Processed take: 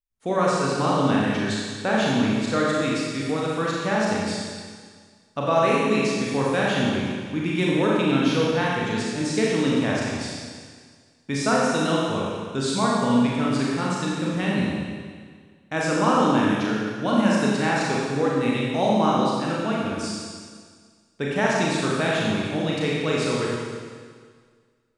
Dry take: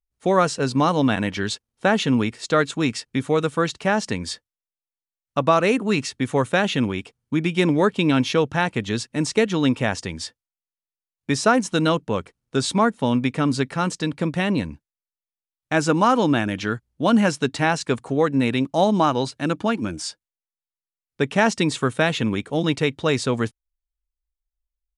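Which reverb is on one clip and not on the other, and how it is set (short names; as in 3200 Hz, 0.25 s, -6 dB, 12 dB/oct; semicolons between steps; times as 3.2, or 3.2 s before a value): Schroeder reverb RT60 1.8 s, combs from 29 ms, DRR -5 dB; gain -7.5 dB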